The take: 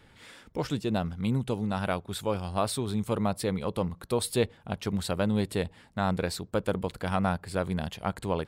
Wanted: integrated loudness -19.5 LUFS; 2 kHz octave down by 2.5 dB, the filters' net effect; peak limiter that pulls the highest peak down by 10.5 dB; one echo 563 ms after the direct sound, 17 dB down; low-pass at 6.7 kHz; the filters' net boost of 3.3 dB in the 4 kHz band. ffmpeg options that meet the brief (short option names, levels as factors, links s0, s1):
-af "lowpass=6700,equalizer=f=2000:t=o:g=-5,equalizer=f=4000:t=o:g=5.5,alimiter=limit=0.0668:level=0:latency=1,aecho=1:1:563:0.141,volume=5.96"